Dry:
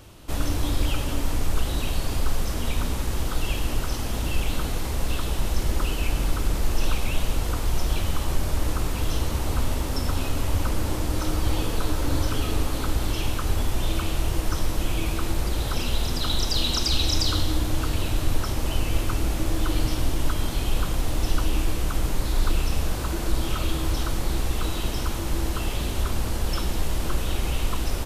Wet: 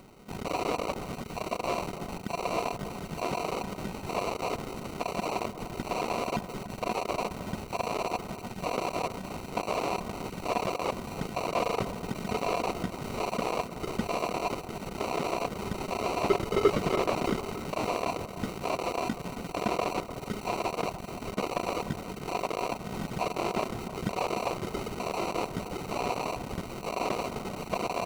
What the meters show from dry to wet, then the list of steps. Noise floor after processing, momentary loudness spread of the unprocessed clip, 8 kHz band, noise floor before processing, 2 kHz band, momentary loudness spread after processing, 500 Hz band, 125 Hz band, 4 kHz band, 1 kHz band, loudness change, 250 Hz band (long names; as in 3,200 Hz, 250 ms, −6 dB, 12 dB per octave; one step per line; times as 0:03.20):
−42 dBFS, 3 LU, −10.5 dB, −28 dBFS, −3.0 dB, 7 LU, +3.5 dB, −13.0 dB, −10.5 dB, +3.5 dB, −5.0 dB, −3.5 dB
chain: sub-octave generator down 1 octave, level 0 dB
reverb reduction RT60 0.56 s
low-shelf EQ 380 Hz +7.5 dB
hard clipping −18.5 dBFS, distortion −6 dB
auto-filter high-pass square 1.1 Hz 460–1,800 Hz
pitch vibrato 7.9 Hz 72 cents
hollow resonant body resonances 720/1,500/3,800 Hz, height 17 dB, ringing for 30 ms
sample-rate reduction 1,700 Hz, jitter 0%
delay that swaps between a low-pass and a high-pass 300 ms, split 1,700 Hz, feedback 69%, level −13.5 dB
slew-rate limiting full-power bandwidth 250 Hz
level −4.5 dB